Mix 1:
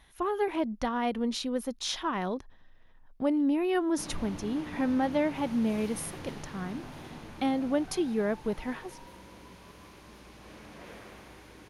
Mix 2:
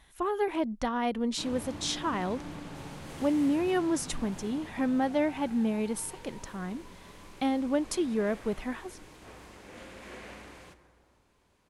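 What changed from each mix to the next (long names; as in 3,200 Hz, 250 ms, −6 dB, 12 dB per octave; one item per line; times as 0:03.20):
background: entry −2.60 s
master: add parametric band 7,800 Hz +11.5 dB 0.21 octaves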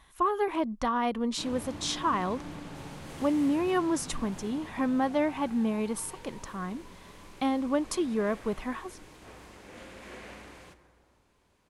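speech: add parametric band 1,100 Hz +9.5 dB 0.31 octaves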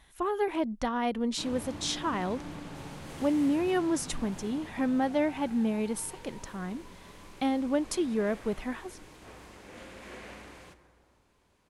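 speech: add parametric band 1,100 Hz −9.5 dB 0.31 octaves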